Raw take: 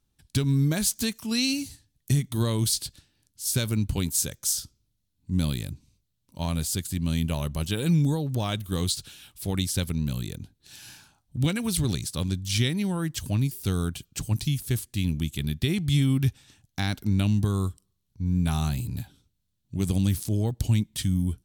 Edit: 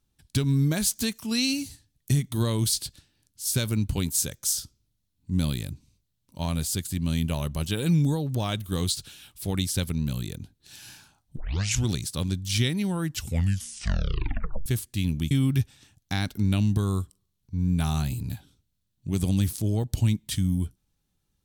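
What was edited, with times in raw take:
11.37 tape start 0.53 s
13.06 tape stop 1.60 s
15.31–15.98 cut

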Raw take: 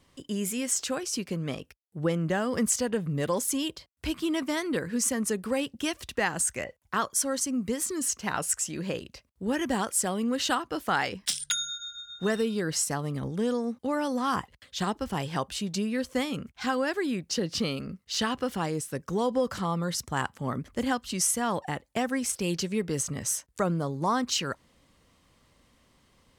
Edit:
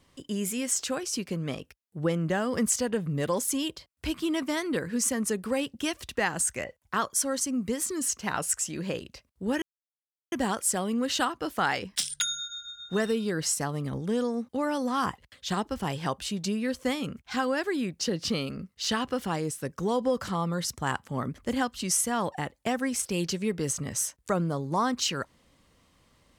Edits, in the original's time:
9.62 insert silence 0.70 s

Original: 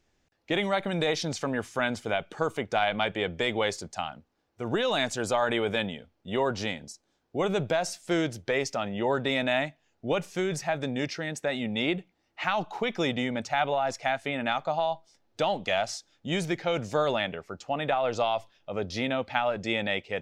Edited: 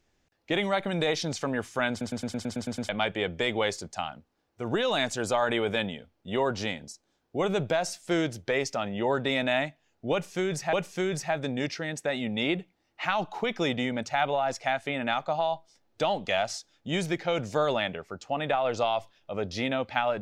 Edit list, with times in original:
1.9 stutter in place 0.11 s, 9 plays
10.12–10.73 loop, 2 plays

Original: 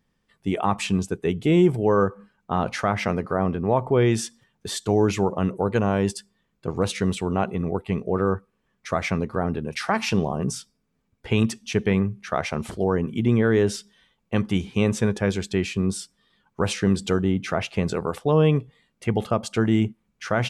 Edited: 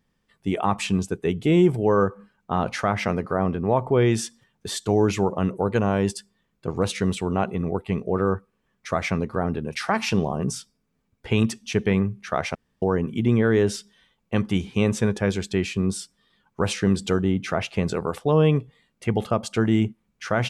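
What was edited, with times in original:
12.55–12.82 room tone

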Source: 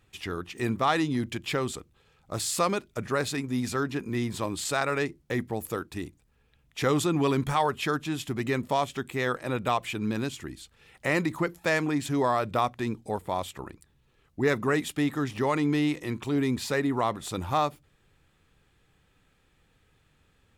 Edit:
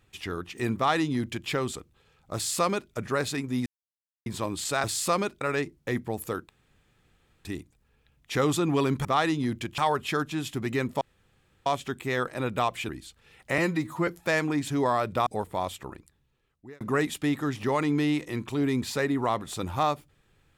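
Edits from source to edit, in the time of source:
0.76–1.49 copy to 7.52
2.35–2.92 copy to 4.84
3.66–4.26 mute
5.92 insert room tone 0.96 s
8.75 insert room tone 0.65 s
9.98–10.44 cut
11.13–11.46 stretch 1.5×
12.65–13.01 cut
13.55–14.55 fade out

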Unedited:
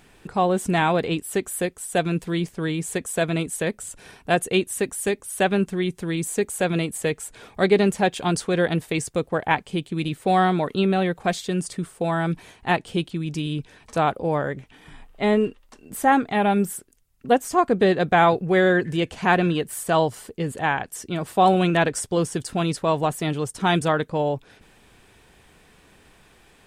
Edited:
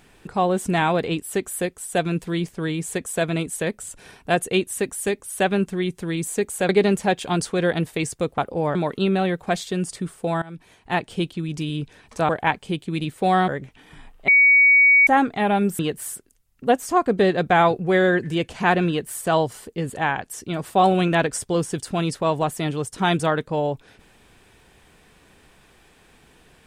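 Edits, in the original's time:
6.69–7.64 cut
9.33–10.52 swap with 14.06–14.43
12.19–12.87 fade in, from -21 dB
15.23–16.02 bleep 2250 Hz -10.5 dBFS
19.5–19.83 copy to 16.74

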